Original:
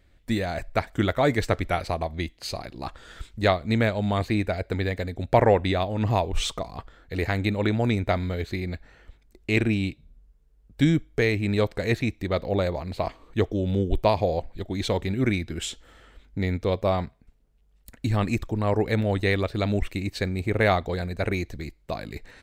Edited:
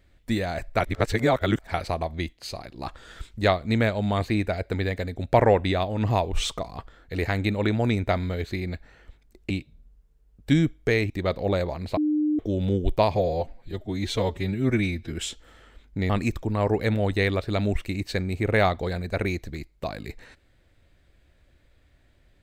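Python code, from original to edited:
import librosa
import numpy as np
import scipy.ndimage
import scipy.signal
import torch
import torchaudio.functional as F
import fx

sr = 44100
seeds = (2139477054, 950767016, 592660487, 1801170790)

y = fx.edit(x, sr, fx.reverse_span(start_s=0.8, length_s=0.94),
    fx.clip_gain(start_s=2.33, length_s=0.45, db=-3.0),
    fx.cut(start_s=9.5, length_s=0.31),
    fx.cut(start_s=11.41, length_s=0.75),
    fx.bleep(start_s=13.03, length_s=0.42, hz=302.0, db=-20.0),
    fx.stretch_span(start_s=14.22, length_s=1.31, factor=1.5),
    fx.cut(start_s=16.5, length_s=1.66), tone=tone)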